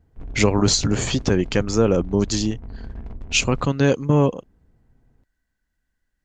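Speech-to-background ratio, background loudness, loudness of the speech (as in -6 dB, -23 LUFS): 18.0 dB, -38.5 LUFS, -20.5 LUFS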